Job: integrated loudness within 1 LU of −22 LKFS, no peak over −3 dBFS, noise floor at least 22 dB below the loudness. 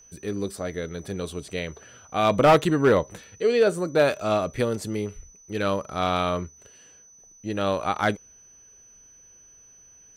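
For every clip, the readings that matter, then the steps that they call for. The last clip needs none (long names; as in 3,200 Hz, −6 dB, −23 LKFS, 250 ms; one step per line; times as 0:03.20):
share of clipped samples 0.3%; peaks flattened at −11.0 dBFS; interfering tone 6,000 Hz; level of the tone −50 dBFS; integrated loudness −24.5 LKFS; sample peak −11.0 dBFS; target loudness −22.0 LKFS
→ clipped peaks rebuilt −11 dBFS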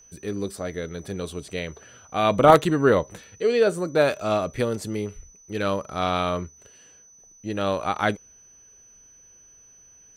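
share of clipped samples 0.0%; interfering tone 6,000 Hz; level of the tone −50 dBFS
→ notch filter 6,000 Hz, Q 30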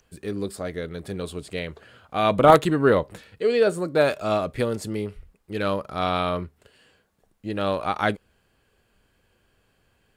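interfering tone none found; integrated loudness −24.0 LKFS; sample peak −2.0 dBFS; target loudness −22.0 LKFS
→ level +2 dB
brickwall limiter −3 dBFS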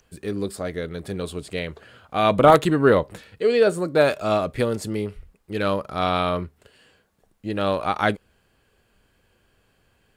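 integrated loudness −22.5 LKFS; sample peak −3.0 dBFS; background noise floor −65 dBFS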